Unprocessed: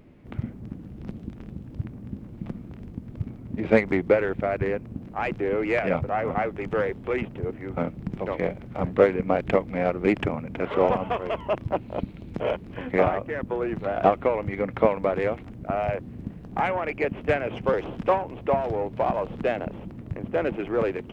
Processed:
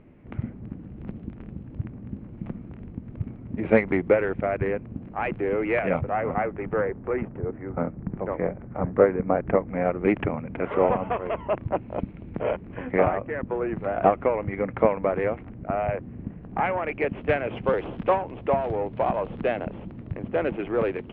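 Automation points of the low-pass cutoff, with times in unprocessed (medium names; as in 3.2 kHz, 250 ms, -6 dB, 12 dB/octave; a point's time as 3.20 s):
low-pass 24 dB/octave
6.00 s 2.8 kHz
6.97 s 1.8 kHz
9.51 s 1.8 kHz
10.10 s 2.5 kHz
16.44 s 2.5 kHz
17.21 s 3.6 kHz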